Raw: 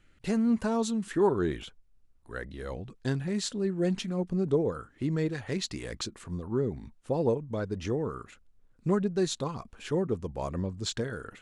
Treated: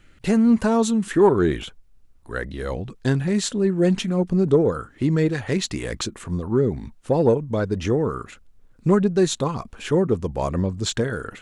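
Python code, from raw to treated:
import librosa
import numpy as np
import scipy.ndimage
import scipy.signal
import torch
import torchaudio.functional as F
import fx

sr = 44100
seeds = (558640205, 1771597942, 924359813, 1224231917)

p1 = fx.dynamic_eq(x, sr, hz=4700.0, q=2.3, threshold_db=-52.0, ratio=4.0, max_db=-5)
p2 = 10.0 ** (-22.5 / 20.0) * np.tanh(p1 / 10.0 ** (-22.5 / 20.0))
p3 = p1 + F.gain(torch.from_numpy(p2), -11.0).numpy()
y = F.gain(torch.from_numpy(p3), 7.5).numpy()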